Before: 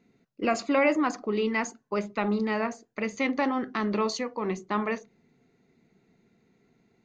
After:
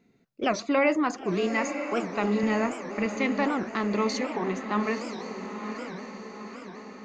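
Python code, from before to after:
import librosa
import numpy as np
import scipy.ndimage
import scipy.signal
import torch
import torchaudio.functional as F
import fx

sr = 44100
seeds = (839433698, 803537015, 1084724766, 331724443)

p1 = fx.low_shelf(x, sr, hz=160.0, db=12.0, at=(2.43, 3.06))
p2 = p1 + fx.echo_diffused(p1, sr, ms=957, feedback_pct=54, wet_db=-8, dry=0)
y = fx.record_warp(p2, sr, rpm=78.0, depth_cents=250.0)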